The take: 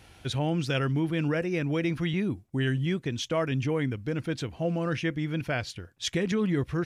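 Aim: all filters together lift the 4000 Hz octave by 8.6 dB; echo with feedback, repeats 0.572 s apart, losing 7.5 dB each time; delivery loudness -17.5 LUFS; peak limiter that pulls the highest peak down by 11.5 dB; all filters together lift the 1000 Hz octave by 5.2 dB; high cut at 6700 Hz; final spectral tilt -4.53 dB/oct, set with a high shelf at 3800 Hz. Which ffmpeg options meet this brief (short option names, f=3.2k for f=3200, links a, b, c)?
-af "lowpass=6.7k,equalizer=f=1k:t=o:g=6,highshelf=f=3.8k:g=8.5,equalizer=f=4k:t=o:g=6,alimiter=limit=-21dB:level=0:latency=1,aecho=1:1:572|1144|1716|2288|2860:0.422|0.177|0.0744|0.0312|0.0131,volume=12dB"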